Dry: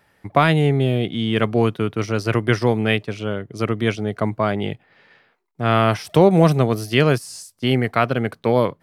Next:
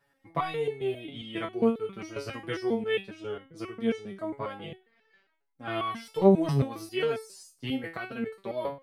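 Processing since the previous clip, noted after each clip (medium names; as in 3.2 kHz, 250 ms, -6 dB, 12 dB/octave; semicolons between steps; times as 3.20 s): resonator arpeggio 7.4 Hz 140–440 Hz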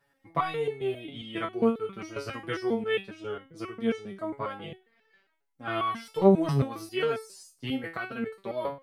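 dynamic bell 1.3 kHz, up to +5 dB, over -50 dBFS, Q 2.4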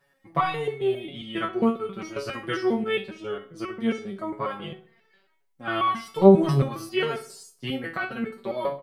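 comb 5.4 ms, depth 43%; filtered feedback delay 64 ms, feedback 44%, low-pass 3.5 kHz, level -14.5 dB; trim +3 dB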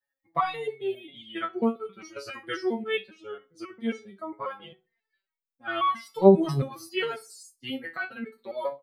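expander on every frequency bin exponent 1.5; bass shelf 110 Hz -11.5 dB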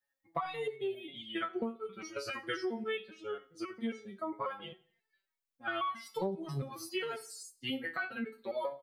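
compression 16:1, threshold -32 dBFS, peak gain reduction 23.5 dB; feedback delay 87 ms, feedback 40%, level -22.5 dB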